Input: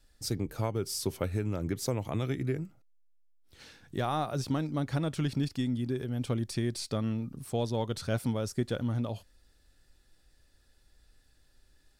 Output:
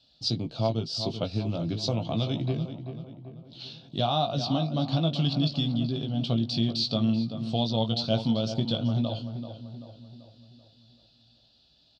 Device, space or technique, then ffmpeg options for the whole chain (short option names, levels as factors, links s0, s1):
guitar cabinet: -filter_complex "[0:a]asplit=3[s0][s1][s2];[s0]afade=t=out:st=0.68:d=0.02[s3];[s1]agate=range=0.0224:threshold=0.0251:ratio=3:detection=peak,afade=t=in:st=0.68:d=0.02,afade=t=out:st=1.09:d=0.02[s4];[s2]afade=t=in:st=1.09:d=0.02[s5];[s3][s4][s5]amix=inputs=3:normalize=0,highpass=100,equalizer=f=140:t=q:w=4:g=9,equalizer=f=230:t=q:w=4:g=5,equalizer=f=410:t=q:w=4:g=-6,equalizer=f=670:t=q:w=4:g=10,equalizer=f=1800:t=q:w=4:g=-7,equalizer=f=2900:t=q:w=4:g=5,lowpass=f=3500:w=0.5412,lowpass=f=3500:w=1.3066,highshelf=f=2900:t=q:w=3:g=13.5,asplit=2[s6][s7];[s7]adelay=18,volume=0.501[s8];[s6][s8]amix=inputs=2:normalize=0,asplit=2[s9][s10];[s10]adelay=386,lowpass=f=2200:p=1,volume=0.335,asplit=2[s11][s12];[s12]adelay=386,lowpass=f=2200:p=1,volume=0.5,asplit=2[s13][s14];[s14]adelay=386,lowpass=f=2200:p=1,volume=0.5,asplit=2[s15][s16];[s16]adelay=386,lowpass=f=2200:p=1,volume=0.5,asplit=2[s17][s18];[s18]adelay=386,lowpass=f=2200:p=1,volume=0.5,asplit=2[s19][s20];[s20]adelay=386,lowpass=f=2200:p=1,volume=0.5[s21];[s9][s11][s13][s15][s17][s19][s21]amix=inputs=7:normalize=0"